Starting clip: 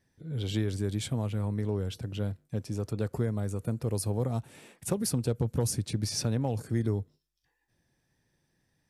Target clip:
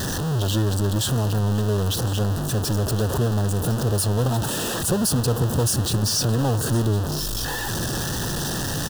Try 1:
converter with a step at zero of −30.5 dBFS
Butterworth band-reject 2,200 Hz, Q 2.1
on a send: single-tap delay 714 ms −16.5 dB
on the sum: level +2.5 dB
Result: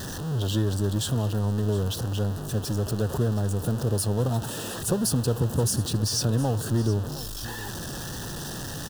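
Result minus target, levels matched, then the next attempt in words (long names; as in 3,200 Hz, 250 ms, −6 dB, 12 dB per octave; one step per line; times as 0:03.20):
echo 345 ms early; converter with a step at zero: distortion −5 dB
converter with a step at zero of −22 dBFS
Butterworth band-reject 2,200 Hz, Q 2.1
on a send: single-tap delay 1,059 ms −16.5 dB
on the sum: level +2.5 dB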